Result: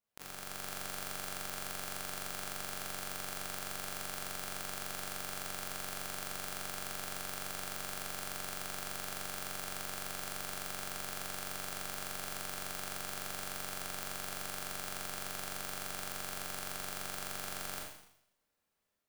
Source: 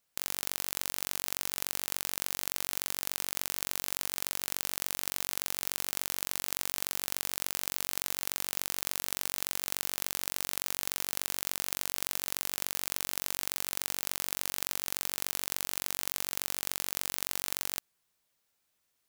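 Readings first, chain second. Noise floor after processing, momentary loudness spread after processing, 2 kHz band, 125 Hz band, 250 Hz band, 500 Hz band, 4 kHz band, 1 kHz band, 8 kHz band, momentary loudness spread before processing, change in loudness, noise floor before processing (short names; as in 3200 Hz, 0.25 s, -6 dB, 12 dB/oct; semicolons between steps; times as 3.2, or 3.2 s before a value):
-78 dBFS, 0 LU, -2.0 dB, +1.0 dB, -1.0 dB, 0.0 dB, -6.5 dB, +0.5 dB, -7.5 dB, 0 LU, -7.0 dB, -78 dBFS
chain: high shelf 2200 Hz -10.5 dB; AGC gain up to 5 dB; Schroeder reverb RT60 0.75 s, combs from 28 ms, DRR -4 dB; gain -8.5 dB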